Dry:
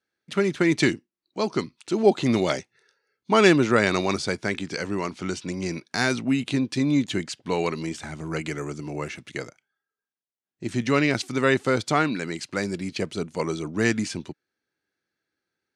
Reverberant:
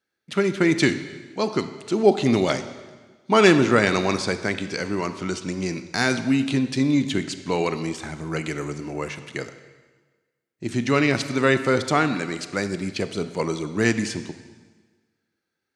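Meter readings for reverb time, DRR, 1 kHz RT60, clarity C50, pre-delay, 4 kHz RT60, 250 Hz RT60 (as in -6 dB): 1.4 s, 10.0 dB, 1.4 s, 11.0 dB, 24 ms, 1.3 s, 1.5 s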